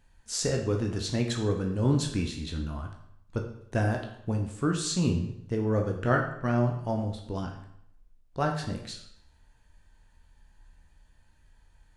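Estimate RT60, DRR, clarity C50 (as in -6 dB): 0.70 s, 1.5 dB, 6.5 dB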